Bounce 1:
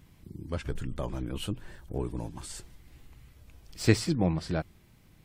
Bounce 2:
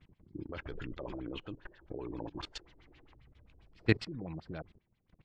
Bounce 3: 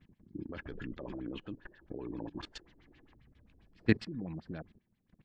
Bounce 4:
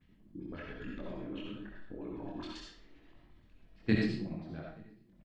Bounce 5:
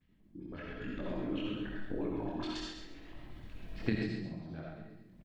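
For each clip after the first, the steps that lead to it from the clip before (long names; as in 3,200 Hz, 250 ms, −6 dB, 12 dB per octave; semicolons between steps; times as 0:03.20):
auto-filter low-pass sine 7.5 Hz 340–4,000 Hz; gain on a spectral selection 0:00.35–0:03.15, 270–7,400 Hz +8 dB; output level in coarse steps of 19 dB; level −3 dB
hollow resonant body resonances 220/1,700 Hz, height 9 dB, ringing for 25 ms; level −3.5 dB
multi-voice chorus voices 4, 0.98 Hz, delay 23 ms, depth 3 ms; slap from a distant wall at 150 metres, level −27 dB; convolution reverb RT60 0.50 s, pre-delay 25 ms, DRR −1.5 dB
camcorder AGC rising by 8.7 dB per second; repeating echo 135 ms, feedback 28%, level −7.5 dB; level −6 dB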